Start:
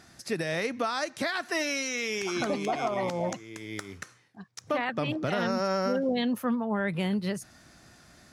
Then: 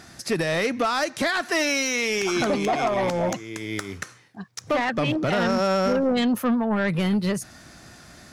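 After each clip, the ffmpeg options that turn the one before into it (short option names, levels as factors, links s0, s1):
-af "asoftclip=type=tanh:threshold=0.0596,volume=2.66"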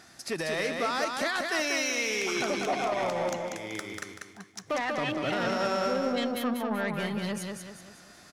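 -filter_complex "[0:a]lowshelf=f=220:g=-9.5,asplit=2[s0][s1];[s1]aecho=0:1:191|382|573|764|955:0.631|0.259|0.106|0.0435|0.0178[s2];[s0][s2]amix=inputs=2:normalize=0,volume=0.501"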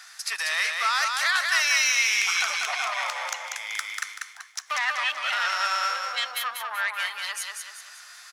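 -af "highpass=f=1100:w=0.5412,highpass=f=1100:w=1.3066,volume=2.66"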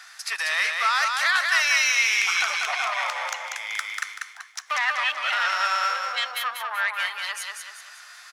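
-af "bass=f=250:g=-5,treble=f=4000:g=-5,volume=1.33"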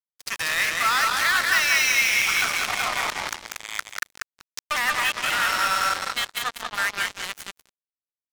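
-filter_complex "[0:a]asplit=2[s0][s1];[s1]adelay=170,highpass=300,lowpass=3400,asoftclip=type=hard:threshold=0.133,volume=0.398[s2];[s0][s2]amix=inputs=2:normalize=0,acrusher=bits=3:mix=0:aa=0.5"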